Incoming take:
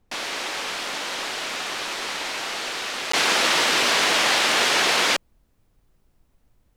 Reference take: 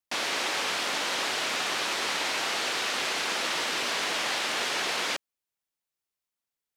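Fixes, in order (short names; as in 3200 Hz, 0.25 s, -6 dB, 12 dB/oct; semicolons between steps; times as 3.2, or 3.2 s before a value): interpolate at 3.12, 14 ms; expander -55 dBFS, range -21 dB; gain correction -9.5 dB, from 3.11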